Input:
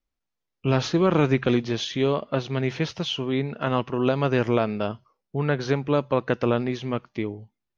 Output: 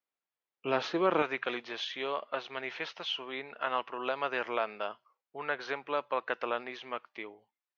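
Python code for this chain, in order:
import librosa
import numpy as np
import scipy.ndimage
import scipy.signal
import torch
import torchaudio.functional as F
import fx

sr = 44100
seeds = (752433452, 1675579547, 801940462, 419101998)

y = fx.bandpass_edges(x, sr, low_hz=fx.steps((0.0, 470.0), (1.22, 800.0)), high_hz=3200.0)
y = y * librosa.db_to_amplitude(-2.5)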